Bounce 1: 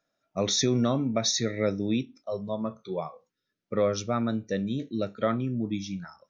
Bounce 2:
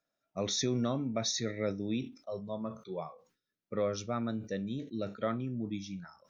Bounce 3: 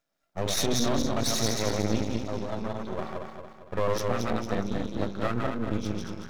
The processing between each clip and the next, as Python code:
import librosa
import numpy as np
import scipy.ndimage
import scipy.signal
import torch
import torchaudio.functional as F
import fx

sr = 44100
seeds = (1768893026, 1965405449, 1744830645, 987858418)

y1 = fx.sustainer(x, sr, db_per_s=140.0)
y1 = y1 * librosa.db_to_amplitude(-7.0)
y2 = fx.reverse_delay_fb(y1, sr, ms=114, feedback_pct=68, wet_db=-2.5)
y2 = np.maximum(y2, 0.0)
y2 = y2 * librosa.db_to_amplitude(7.5)